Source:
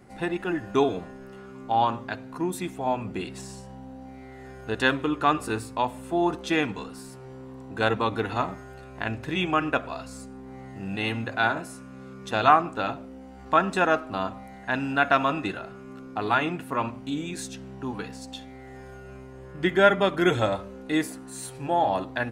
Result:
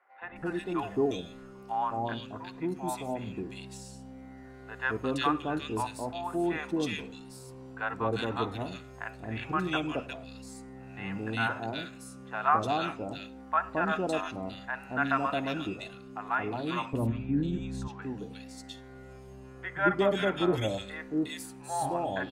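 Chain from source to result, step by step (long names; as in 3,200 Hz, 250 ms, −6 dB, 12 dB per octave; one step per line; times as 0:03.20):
0:16.71–0:17.66: RIAA equalisation playback
three-band delay without the direct sound mids, lows, highs 220/360 ms, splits 720/2,200 Hz
level −4 dB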